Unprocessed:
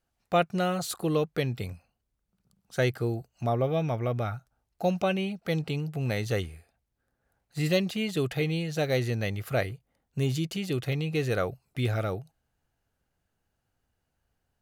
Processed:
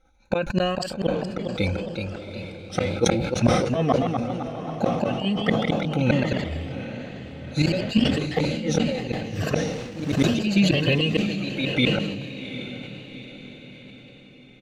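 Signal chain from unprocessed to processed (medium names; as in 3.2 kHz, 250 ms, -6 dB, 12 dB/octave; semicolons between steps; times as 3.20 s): drifting ripple filter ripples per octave 1.4, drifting +0.68 Hz, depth 18 dB; treble shelf 11 kHz +9.5 dB; comb 3.9 ms, depth 62%; inverted gate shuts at -17 dBFS, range -32 dB; echo that smears into a reverb 790 ms, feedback 50%, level -10 dB; 9.73–10.32 s: companded quantiser 4-bit; ever faster or slower copies 466 ms, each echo +1 st, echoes 3, each echo -6 dB; distance through air 130 m; decay stretcher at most 42 dB/s; trim +9 dB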